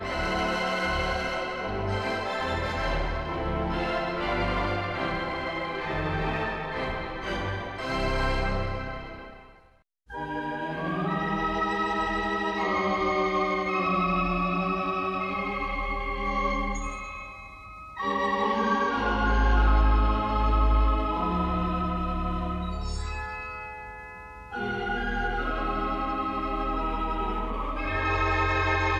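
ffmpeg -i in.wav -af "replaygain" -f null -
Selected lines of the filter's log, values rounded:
track_gain = +10.6 dB
track_peak = 0.187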